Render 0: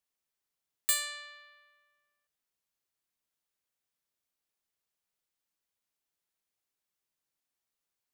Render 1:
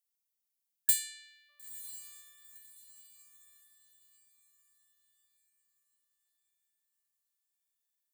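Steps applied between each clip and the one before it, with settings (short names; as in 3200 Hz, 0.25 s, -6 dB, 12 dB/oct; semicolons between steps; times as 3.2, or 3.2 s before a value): pre-emphasis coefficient 0.8; diffused feedback echo 0.959 s, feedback 40%, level -14 dB; spectral delete 0.51–1.49, 310–1700 Hz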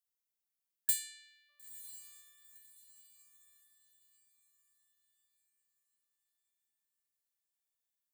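bell 880 Hz -2 dB 0.92 oct; gain -4.5 dB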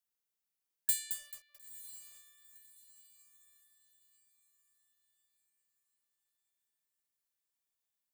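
lo-fi delay 0.219 s, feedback 35%, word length 8-bit, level -7.5 dB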